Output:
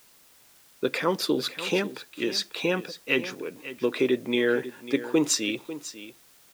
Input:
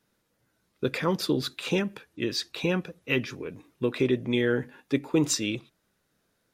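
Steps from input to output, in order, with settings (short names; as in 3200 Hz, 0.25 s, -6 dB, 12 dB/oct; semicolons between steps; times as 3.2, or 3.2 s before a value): HPF 270 Hz 12 dB/oct; in parallel at -9 dB: requantised 8-bit, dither triangular; on the sum: echo 0.546 s -14 dB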